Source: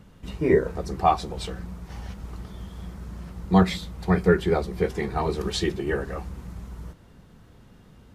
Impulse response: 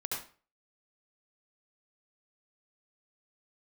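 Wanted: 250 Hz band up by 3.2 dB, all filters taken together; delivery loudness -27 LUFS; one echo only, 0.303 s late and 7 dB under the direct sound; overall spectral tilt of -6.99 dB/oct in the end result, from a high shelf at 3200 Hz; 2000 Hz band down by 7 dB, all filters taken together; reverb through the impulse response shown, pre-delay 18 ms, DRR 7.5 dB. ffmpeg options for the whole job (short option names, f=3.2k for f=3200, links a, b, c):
-filter_complex "[0:a]equalizer=f=250:t=o:g=5.5,equalizer=f=2k:t=o:g=-6.5,highshelf=f=3.2k:g=-8,aecho=1:1:303:0.447,asplit=2[a][b];[1:a]atrim=start_sample=2205,adelay=18[c];[b][c]afir=irnorm=-1:irlink=0,volume=-10.5dB[d];[a][d]amix=inputs=2:normalize=0,volume=-5dB"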